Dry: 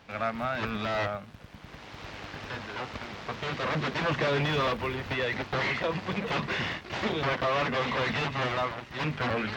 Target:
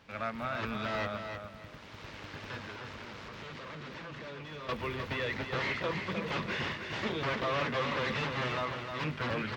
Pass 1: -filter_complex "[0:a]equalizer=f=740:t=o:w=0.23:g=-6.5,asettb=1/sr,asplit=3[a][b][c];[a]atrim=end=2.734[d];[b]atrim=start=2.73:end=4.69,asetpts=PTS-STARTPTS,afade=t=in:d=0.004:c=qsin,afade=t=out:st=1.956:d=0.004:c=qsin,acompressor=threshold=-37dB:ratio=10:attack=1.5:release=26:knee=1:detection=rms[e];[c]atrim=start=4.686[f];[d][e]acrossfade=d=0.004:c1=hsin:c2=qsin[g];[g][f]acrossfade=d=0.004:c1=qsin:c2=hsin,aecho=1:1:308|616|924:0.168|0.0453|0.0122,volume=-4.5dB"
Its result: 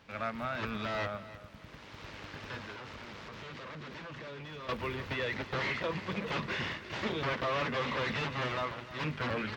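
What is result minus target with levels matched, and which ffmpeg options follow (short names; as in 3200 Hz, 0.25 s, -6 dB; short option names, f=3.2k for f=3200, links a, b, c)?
echo-to-direct -9 dB
-filter_complex "[0:a]equalizer=f=740:t=o:w=0.23:g=-6.5,asettb=1/sr,asplit=3[a][b][c];[a]atrim=end=2.734[d];[b]atrim=start=2.73:end=4.69,asetpts=PTS-STARTPTS,afade=t=in:d=0.004:c=qsin,afade=t=out:st=1.956:d=0.004:c=qsin,acompressor=threshold=-37dB:ratio=10:attack=1.5:release=26:knee=1:detection=rms[e];[c]atrim=start=4.686[f];[d][e]acrossfade=d=0.004:c1=hsin:c2=qsin[g];[g][f]acrossfade=d=0.004:c1=qsin:c2=hsin,aecho=1:1:308|616|924:0.473|0.128|0.0345,volume=-4.5dB"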